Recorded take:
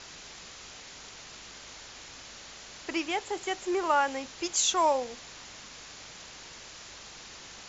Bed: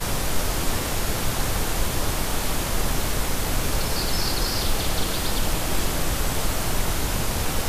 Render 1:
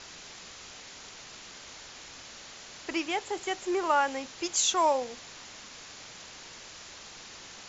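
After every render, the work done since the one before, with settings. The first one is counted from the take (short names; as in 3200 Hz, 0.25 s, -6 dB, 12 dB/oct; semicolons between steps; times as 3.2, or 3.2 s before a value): de-hum 50 Hz, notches 3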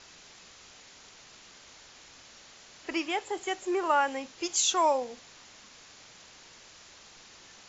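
noise print and reduce 6 dB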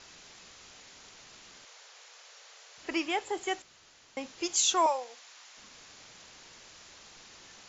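1.65–2.78 Chebyshev high-pass 450 Hz, order 4; 3.62–4.17 room tone; 4.86–5.57 HPF 740 Hz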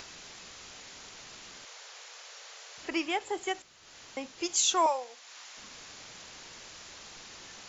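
upward compressor, threshold -41 dBFS; ending taper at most 480 dB/s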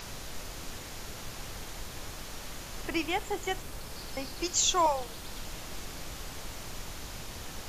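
add bed -18 dB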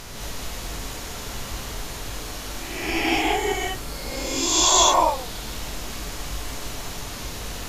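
spectral swells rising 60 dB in 1.16 s; non-linear reverb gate 0.24 s rising, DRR -4.5 dB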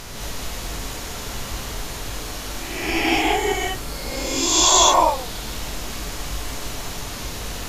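gain +2.5 dB; limiter -3 dBFS, peak gain reduction 1 dB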